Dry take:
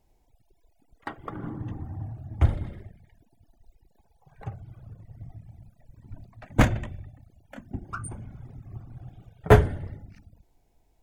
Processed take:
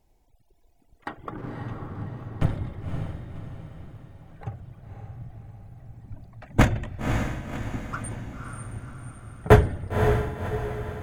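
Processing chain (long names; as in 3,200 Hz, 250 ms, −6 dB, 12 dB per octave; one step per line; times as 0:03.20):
0:01.37–0:02.57: lower of the sound and its delayed copy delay 7.6 ms
feedback delay with all-pass diffusion 543 ms, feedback 49%, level −5 dB
level +1 dB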